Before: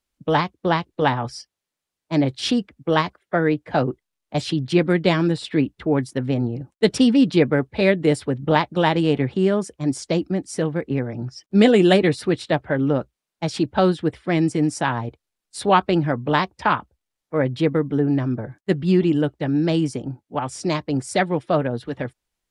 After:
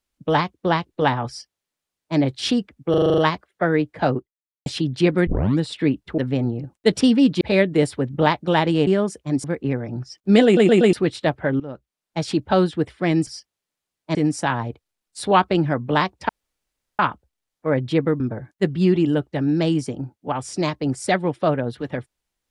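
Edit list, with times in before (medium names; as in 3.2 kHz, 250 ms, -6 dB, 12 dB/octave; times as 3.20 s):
1.29–2.17 s: copy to 14.53 s
2.90 s: stutter 0.04 s, 8 plays
3.89–4.38 s: fade out exponential
4.99 s: tape start 0.32 s
5.90–6.15 s: delete
7.38–7.70 s: delete
9.16–9.41 s: delete
9.98–10.70 s: delete
11.71 s: stutter in place 0.12 s, 4 plays
12.86–13.46 s: fade in, from -19.5 dB
16.67 s: insert room tone 0.70 s
17.88–18.27 s: delete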